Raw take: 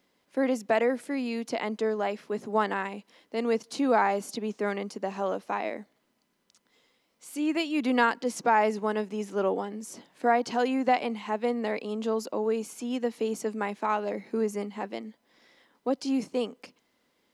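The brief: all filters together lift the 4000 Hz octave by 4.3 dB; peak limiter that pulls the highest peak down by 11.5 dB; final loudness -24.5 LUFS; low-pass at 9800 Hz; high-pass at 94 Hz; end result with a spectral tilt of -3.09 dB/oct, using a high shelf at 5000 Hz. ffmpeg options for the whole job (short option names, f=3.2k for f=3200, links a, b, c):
-af "highpass=94,lowpass=9.8k,equalizer=f=4k:t=o:g=8.5,highshelf=f=5k:g=-5.5,volume=7dB,alimiter=limit=-13dB:level=0:latency=1"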